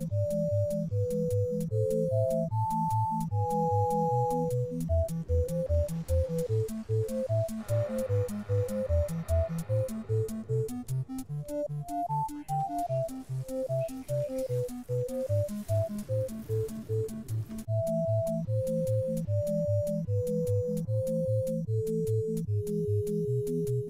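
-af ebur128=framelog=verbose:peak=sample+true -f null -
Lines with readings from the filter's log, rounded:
Integrated loudness:
  I:         -31.0 LUFS
  Threshold: -41.0 LUFS
Loudness range:
  LRA:         4.1 LU
  Threshold: -51.1 LUFS
  LRA low:   -33.3 LUFS
  LRA high:  -29.2 LUFS
Sample peak:
  Peak:      -17.7 dBFS
True peak:
  Peak:      -17.7 dBFS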